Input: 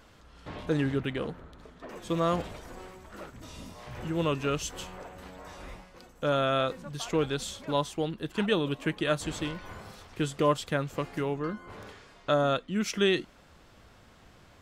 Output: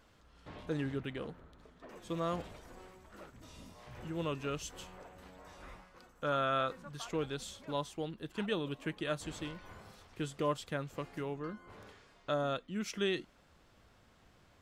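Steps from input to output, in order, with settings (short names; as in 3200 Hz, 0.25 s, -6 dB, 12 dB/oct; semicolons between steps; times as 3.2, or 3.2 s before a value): 5.62–7.07 bell 1300 Hz +6.5 dB 0.99 oct; gain -8.5 dB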